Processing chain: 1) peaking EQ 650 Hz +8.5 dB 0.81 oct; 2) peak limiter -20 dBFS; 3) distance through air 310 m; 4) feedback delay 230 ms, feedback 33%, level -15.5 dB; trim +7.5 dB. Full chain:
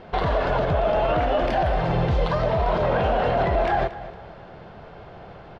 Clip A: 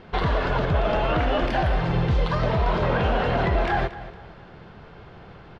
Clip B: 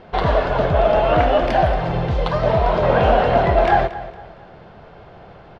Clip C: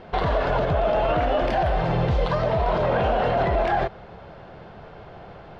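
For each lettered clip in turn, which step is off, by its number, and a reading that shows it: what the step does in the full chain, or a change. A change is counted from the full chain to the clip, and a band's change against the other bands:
1, 500 Hz band -5.0 dB; 2, mean gain reduction 3.0 dB; 4, momentary loudness spread change -2 LU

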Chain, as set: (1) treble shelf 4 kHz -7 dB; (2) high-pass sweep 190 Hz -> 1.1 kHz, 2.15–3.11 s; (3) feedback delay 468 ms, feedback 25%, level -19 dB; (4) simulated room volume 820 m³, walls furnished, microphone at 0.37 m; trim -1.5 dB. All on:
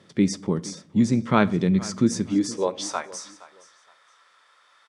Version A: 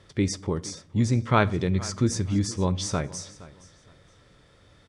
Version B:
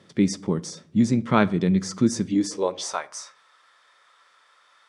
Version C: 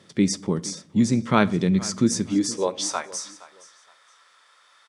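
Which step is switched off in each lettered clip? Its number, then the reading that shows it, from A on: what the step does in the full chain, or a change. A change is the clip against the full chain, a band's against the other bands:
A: 2, 250 Hz band -5.0 dB; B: 3, echo-to-direct -14.0 dB to -15.5 dB; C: 1, 8 kHz band +5.0 dB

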